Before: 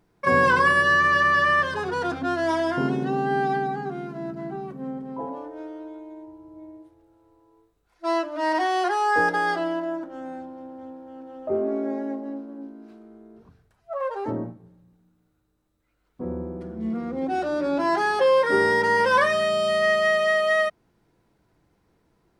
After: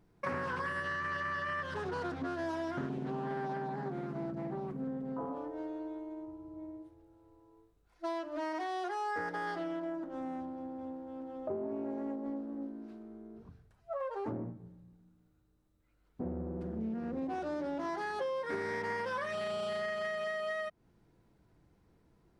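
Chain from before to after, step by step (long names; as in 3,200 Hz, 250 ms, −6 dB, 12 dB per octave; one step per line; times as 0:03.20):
low-shelf EQ 290 Hz +7 dB
downward compressor 6 to 1, threshold −29 dBFS, peak gain reduction 14.5 dB
highs frequency-modulated by the lows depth 0.35 ms
level −5.5 dB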